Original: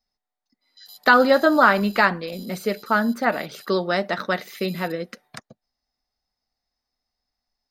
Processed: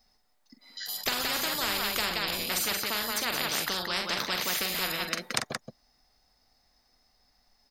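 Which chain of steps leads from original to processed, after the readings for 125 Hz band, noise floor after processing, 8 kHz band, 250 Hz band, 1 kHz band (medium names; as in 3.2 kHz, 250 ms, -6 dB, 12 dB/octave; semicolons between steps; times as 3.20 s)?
-11.5 dB, -69 dBFS, +13.0 dB, -16.0 dB, -13.0 dB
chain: loudspeakers at several distances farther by 15 m -10 dB, 60 m -10 dB; spectrum-flattening compressor 10:1; trim -5 dB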